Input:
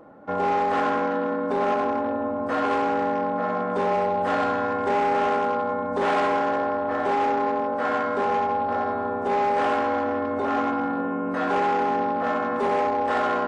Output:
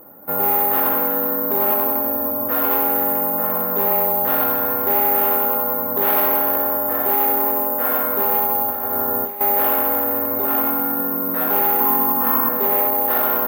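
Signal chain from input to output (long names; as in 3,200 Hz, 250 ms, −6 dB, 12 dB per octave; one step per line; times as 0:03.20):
0:08.70–0:09.41: compressor whose output falls as the input rises −27 dBFS, ratio −0.5
0:11.80–0:12.49: thirty-one-band graphic EQ 250 Hz +6 dB, 630 Hz −10 dB, 1,000 Hz +10 dB
bad sample-rate conversion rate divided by 3×, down filtered, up zero stuff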